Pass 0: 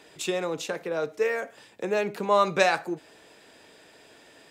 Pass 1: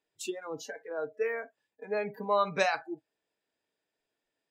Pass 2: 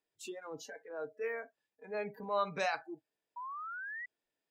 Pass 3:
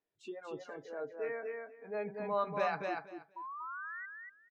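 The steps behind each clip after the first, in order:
spectral noise reduction 27 dB; gain -5.5 dB
transient shaper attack -6 dB, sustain -1 dB; painted sound rise, 3.36–4.06, 950–2000 Hz -38 dBFS; gain -4.5 dB
tape spacing loss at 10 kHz 25 dB; on a send: feedback echo 0.238 s, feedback 17%, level -3.5 dB; on the sum: gain +1.5 dB

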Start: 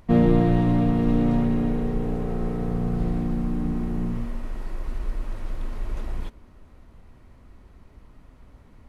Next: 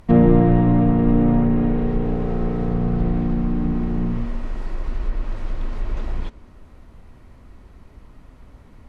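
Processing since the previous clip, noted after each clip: treble ducked by the level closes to 1900 Hz, closed at -17 dBFS; gain +4.5 dB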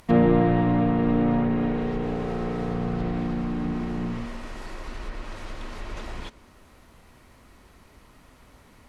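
tilt +2.5 dB/oct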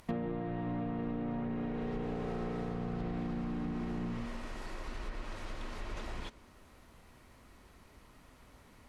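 compressor 16:1, threshold -27 dBFS, peak gain reduction 14 dB; gain -5.5 dB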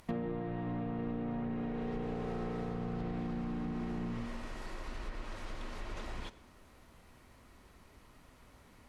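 reverb RT60 0.95 s, pre-delay 4 ms, DRR 15 dB; gain -1 dB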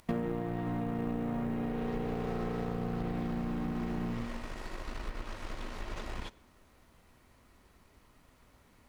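G.711 law mismatch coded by A; gain +5.5 dB

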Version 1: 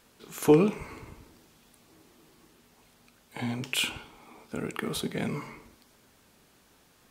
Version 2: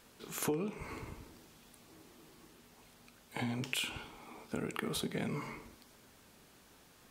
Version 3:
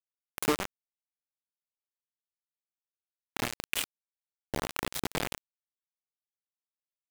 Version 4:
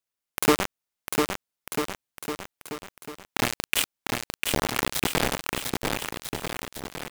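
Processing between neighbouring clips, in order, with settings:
compressor 6:1, threshold -33 dBFS, peak gain reduction 17.5 dB
bit-crush 5-bit; gain +4.5 dB
bouncing-ball echo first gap 0.7 s, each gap 0.85×, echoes 5; gain +7.5 dB

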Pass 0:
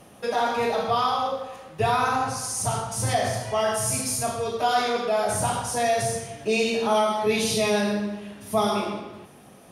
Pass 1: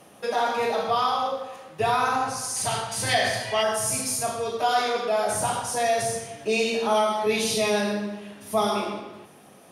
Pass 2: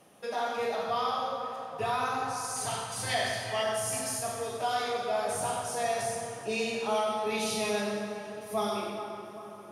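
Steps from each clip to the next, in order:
HPF 180 Hz 6 dB/oct; spectral gain 2.56–3.63, 1500–5000 Hz +8 dB; notches 60/120/180/240 Hz
split-band echo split 1800 Hz, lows 0.411 s, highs 93 ms, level -10 dB; plate-style reverb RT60 3.2 s, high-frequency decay 0.8×, DRR 8 dB; gain -8 dB

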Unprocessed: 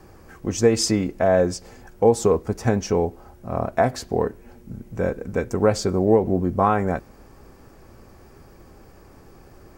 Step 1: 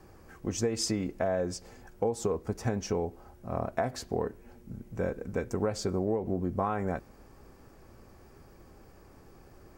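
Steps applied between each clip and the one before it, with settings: compressor 6:1, threshold -19 dBFS, peak gain reduction 8.5 dB; gain -6.5 dB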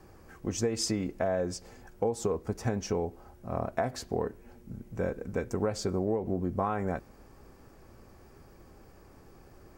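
nothing audible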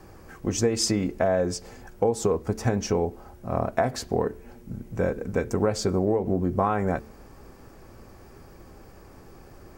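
de-hum 73.05 Hz, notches 6; gain +6.5 dB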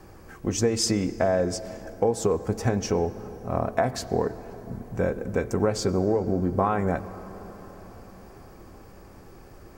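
reverb RT60 5.5 s, pre-delay 83 ms, DRR 15 dB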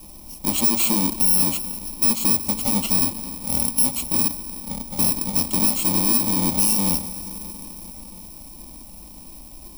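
FFT order left unsorted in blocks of 64 samples; hard clip -21.5 dBFS, distortion -10 dB; fixed phaser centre 420 Hz, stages 6; gain +8 dB

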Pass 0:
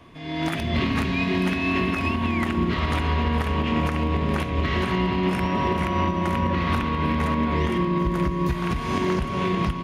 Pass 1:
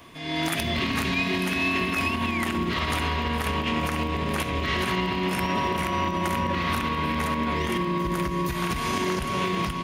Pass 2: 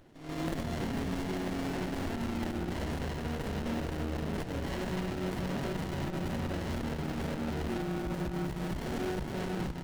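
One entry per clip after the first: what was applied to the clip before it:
high shelf 7600 Hz +8.5 dB; limiter -17.5 dBFS, peak gain reduction 5.5 dB; tilt +1.5 dB/oct; gain +2 dB
in parallel at -11.5 dB: bit-crush 4-bit; on the sum: flange 0.76 Hz, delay 1.9 ms, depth 5.5 ms, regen -66%; running maximum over 33 samples; gain -4.5 dB

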